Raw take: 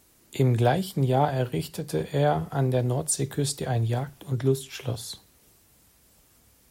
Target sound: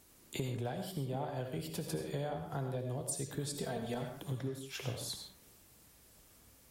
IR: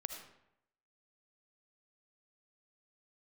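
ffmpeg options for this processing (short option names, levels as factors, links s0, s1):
-filter_complex "[0:a]asettb=1/sr,asplit=3[s0][s1][s2];[s0]atrim=end=3.554[s3];[s1]atrim=start=3.55:end=4.02,asetpts=PTS-STARTPTS,afade=t=in:d=0.004:c=qsin,afade=t=out:st=0.466:d=0.004:c=qsin,aecho=1:1:4.5:0.84,atrim=end_sample=20727[s4];[s2]atrim=start=4.016[s5];[s3][s4]acrossfade=d=0.004:c1=hsin:c2=qsin[s6];[s6][s5]acrossfade=d=0.004:c1=qsin:c2=hsin,acompressor=threshold=0.0251:ratio=10[s7];[1:a]atrim=start_sample=2205,afade=t=out:st=0.21:d=0.01,atrim=end_sample=9702,asetrate=39249,aresample=44100[s8];[s7][s8]afir=irnorm=-1:irlink=0,volume=0.891"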